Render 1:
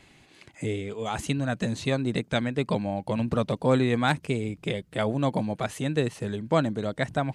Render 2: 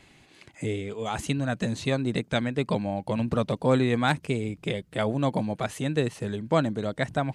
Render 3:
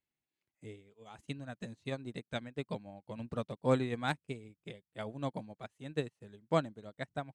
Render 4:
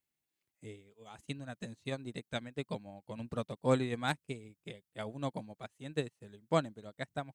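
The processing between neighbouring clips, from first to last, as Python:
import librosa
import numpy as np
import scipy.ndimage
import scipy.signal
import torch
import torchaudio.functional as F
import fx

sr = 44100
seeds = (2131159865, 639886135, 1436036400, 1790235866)

y1 = x
y2 = fx.upward_expand(y1, sr, threshold_db=-41.0, expansion=2.5)
y2 = y2 * 10.0 ** (-5.0 / 20.0)
y3 = fx.high_shelf(y2, sr, hz=5600.0, db=7.0)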